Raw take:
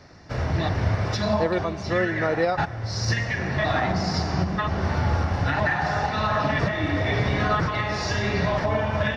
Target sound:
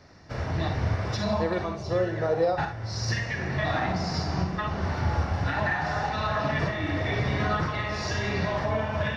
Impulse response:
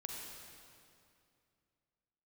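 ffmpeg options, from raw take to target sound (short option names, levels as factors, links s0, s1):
-filter_complex "[0:a]asettb=1/sr,asplit=3[s0][s1][s2];[s0]atrim=end=1.764[s3];[s1]atrim=start=1.76:end=2.57,asetpts=PTS-STARTPTS,afade=t=in:d=0.004:c=qsin,afade=t=out:st=0.806:d=0.004:c=qsin,equalizer=f=125:t=o:w=1:g=4,equalizer=f=250:t=o:w=1:g=-7,equalizer=f=500:t=o:w=1:g=6,equalizer=f=2000:t=o:w=1:g=-10[s4];[s2]atrim=start=2.566[s5];[s3][s4]acrossfade=d=0.004:c1=hsin:c2=qsin[s6];[s6][s5]acrossfade=d=0.004:c1=qsin:c2=hsin[s7];[1:a]atrim=start_sample=2205,atrim=end_sample=3528[s8];[s7][s8]afir=irnorm=-1:irlink=0"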